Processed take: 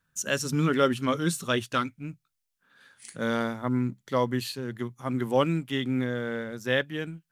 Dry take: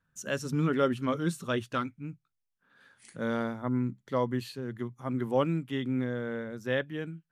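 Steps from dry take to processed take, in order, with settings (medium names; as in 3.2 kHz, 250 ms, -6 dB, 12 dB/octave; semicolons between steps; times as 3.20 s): treble shelf 2.3 kHz +9 dB; in parallel at -8.5 dB: crossover distortion -47 dBFS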